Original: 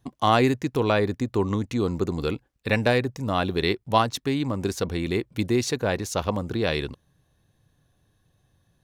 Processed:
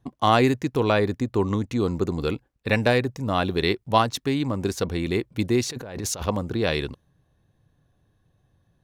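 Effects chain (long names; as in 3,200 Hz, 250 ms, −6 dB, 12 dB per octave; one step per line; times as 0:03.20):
0:05.67–0:06.26: compressor whose output falls as the input rises −33 dBFS, ratio −1
one half of a high-frequency compander decoder only
level +1 dB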